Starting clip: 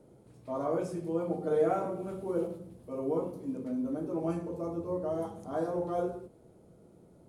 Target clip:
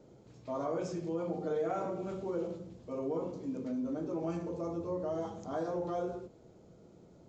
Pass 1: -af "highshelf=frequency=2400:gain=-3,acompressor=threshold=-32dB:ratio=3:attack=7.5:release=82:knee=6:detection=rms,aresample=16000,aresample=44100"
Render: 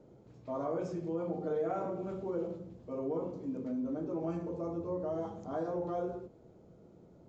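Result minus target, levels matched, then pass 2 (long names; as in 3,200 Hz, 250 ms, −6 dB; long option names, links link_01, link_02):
4,000 Hz band −7.0 dB
-af "highshelf=frequency=2400:gain=7,acompressor=threshold=-32dB:ratio=3:attack=7.5:release=82:knee=6:detection=rms,aresample=16000,aresample=44100"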